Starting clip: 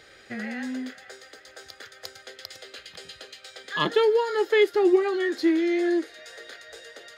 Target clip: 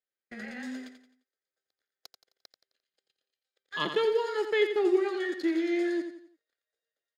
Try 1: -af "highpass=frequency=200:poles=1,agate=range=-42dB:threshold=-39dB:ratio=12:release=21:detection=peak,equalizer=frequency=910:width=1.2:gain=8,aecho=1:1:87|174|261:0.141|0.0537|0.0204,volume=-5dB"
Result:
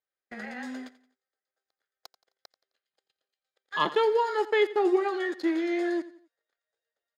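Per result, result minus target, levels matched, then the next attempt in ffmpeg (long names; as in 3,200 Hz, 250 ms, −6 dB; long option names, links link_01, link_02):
1,000 Hz band +6.5 dB; echo-to-direct −8.5 dB
-af "highpass=frequency=200:poles=1,agate=range=-42dB:threshold=-39dB:ratio=12:release=21:detection=peak,equalizer=frequency=910:width=1.2:gain=-2,aecho=1:1:87|174|261:0.141|0.0537|0.0204,volume=-5dB"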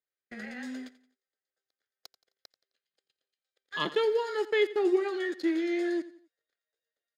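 echo-to-direct −8.5 dB
-af "highpass=frequency=200:poles=1,agate=range=-42dB:threshold=-39dB:ratio=12:release=21:detection=peak,equalizer=frequency=910:width=1.2:gain=-2,aecho=1:1:87|174|261|348:0.376|0.143|0.0543|0.0206,volume=-5dB"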